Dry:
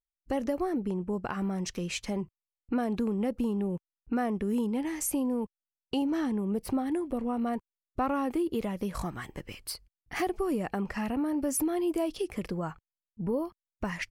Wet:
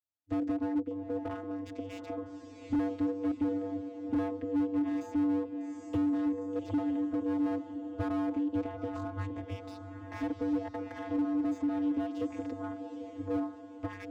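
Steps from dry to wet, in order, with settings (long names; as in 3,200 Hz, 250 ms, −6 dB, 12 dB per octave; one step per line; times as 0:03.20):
camcorder AGC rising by 31 dB per second
channel vocoder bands 16, square 97 Hz
feedback delay with all-pass diffusion 805 ms, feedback 46%, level −9 dB
slew-rate limiting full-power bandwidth 15 Hz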